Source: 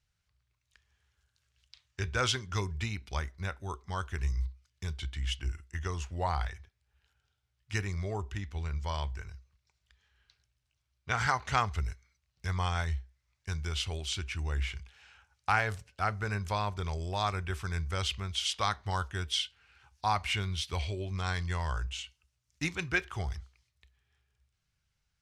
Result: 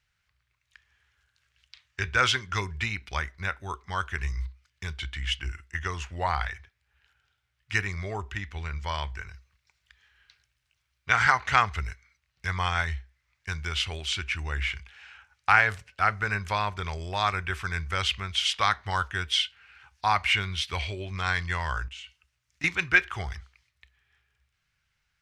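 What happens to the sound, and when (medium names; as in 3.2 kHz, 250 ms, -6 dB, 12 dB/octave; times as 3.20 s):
9.34–11.19 s: treble shelf 4.6 kHz +4.5 dB
21.88–22.64 s: compression 3:1, threshold -48 dBFS
whole clip: de-esser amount 55%; peaking EQ 1.9 kHz +11 dB 1.9 oct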